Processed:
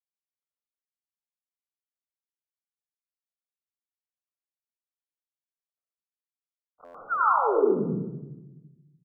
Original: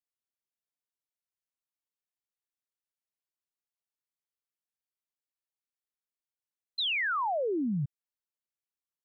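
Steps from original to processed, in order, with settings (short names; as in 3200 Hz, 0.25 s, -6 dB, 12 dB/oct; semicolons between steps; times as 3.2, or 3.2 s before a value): median filter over 25 samples; HPF 450 Hz 12 dB/oct; comb 1.6 ms, depth 50%; negative-ratio compressor -34 dBFS, ratio -0.5; phaser 1 Hz, delay 2.6 ms, feedback 36%; brick-wall FIR low-pass 1500 Hz; reverb RT60 1.0 s, pre-delay 81 ms, DRR -6.5 dB; stuck buffer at 6.84, samples 512, times 8; gain +5 dB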